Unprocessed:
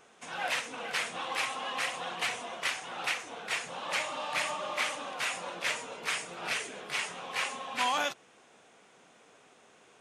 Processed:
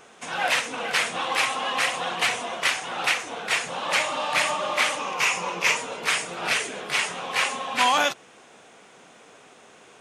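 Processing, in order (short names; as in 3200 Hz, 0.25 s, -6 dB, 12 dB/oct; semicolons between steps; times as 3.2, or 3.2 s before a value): 4.98–5.77 ripple EQ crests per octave 0.78, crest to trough 8 dB; gain +9 dB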